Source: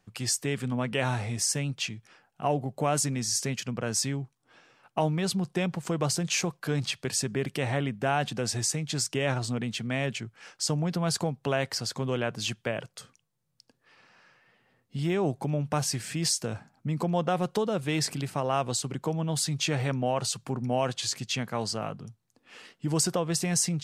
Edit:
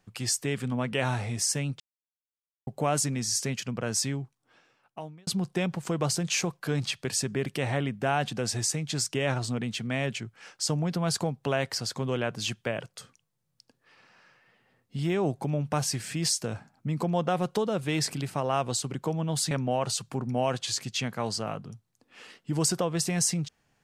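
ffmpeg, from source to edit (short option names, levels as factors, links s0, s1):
-filter_complex "[0:a]asplit=5[s0][s1][s2][s3][s4];[s0]atrim=end=1.8,asetpts=PTS-STARTPTS,afade=t=out:st=1.796:d=0.004:c=hsin[s5];[s1]atrim=start=1.8:end=2.67,asetpts=PTS-STARTPTS,volume=0[s6];[s2]atrim=start=2.67:end=5.27,asetpts=PTS-STARTPTS,afade=t=in:d=0.004:c=hsin,afade=t=out:st=1.45:d=1.15[s7];[s3]atrim=start=5.27:end=19.512,asetpts=PTS-STARTPTS,afade=t=in:d=0.004:c=hsin[s8];[s4]atrim=start=19.858[s9];[s5][s6][s7][s8]concat=n=4:v=0:a=1[s10];[s10][s9]acrossfade=d=0.004:c1=hsin:c2=hsin"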